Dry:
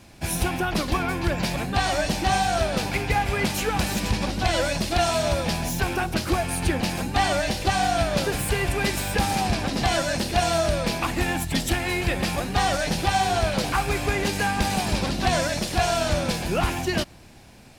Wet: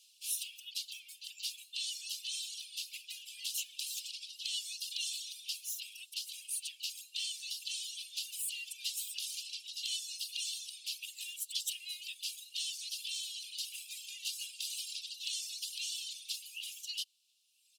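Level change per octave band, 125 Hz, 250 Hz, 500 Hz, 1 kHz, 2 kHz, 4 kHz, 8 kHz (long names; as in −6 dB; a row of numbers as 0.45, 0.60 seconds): below −40 dB, below −40 dB, below −40 dB, below −40 dB, −22.5 dB, −8.0 dB, −7.5 dB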